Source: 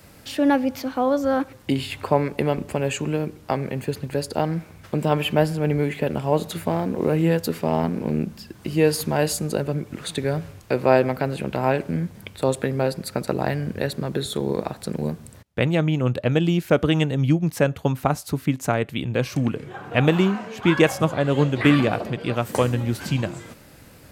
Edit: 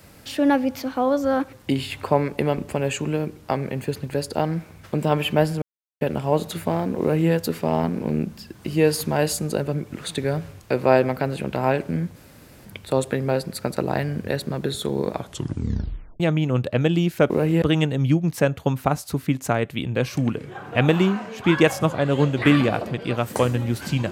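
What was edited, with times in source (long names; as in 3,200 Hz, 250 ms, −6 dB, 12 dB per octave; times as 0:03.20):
0:05.62–0:06.01: silence
0:07.00–0:07.32: duplicate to 0:16.81
0:12.16: splice in room tone 0.49 s
0:14.63: tape stop 1.08 s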